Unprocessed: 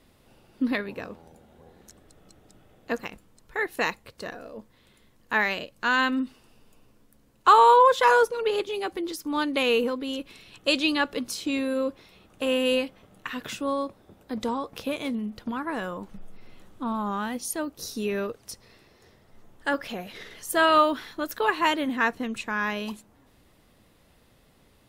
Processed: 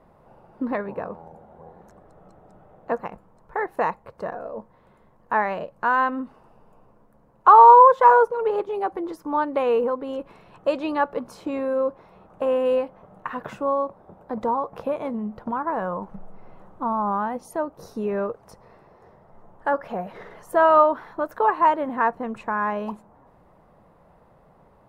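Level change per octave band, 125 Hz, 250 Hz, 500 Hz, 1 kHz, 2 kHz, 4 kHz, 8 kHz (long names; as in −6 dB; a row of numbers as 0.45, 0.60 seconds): can't be measured, −1.5 dB, +4.0 dB, +6.5 dB, −3.5 dB, below −15 dB, below −15 dB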